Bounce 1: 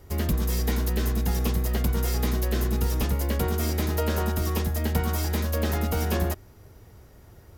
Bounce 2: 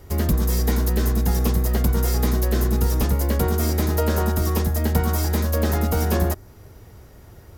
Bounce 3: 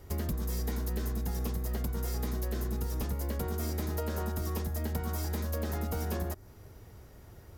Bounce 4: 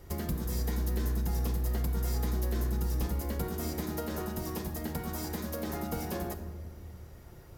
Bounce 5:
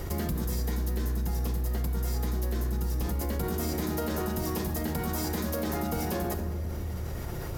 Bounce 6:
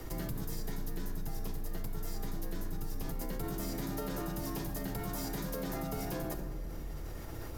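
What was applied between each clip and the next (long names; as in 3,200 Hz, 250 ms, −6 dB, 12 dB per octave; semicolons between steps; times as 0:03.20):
dynamic equaliser 2,800 Hz, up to −6 dB, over −53 dBFS, Q 1.3; level +5 dB
downward compressor 5 to 1, threshold −24 dBFS, peak gain reduction 9 dB; level −6.5 dB
convolution reverb RT60 1.4 s, pre-delay 6 ms, DRR 6 dB
envelope flattener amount 70%
frequency shifter −38 Hz; level −6.5 dB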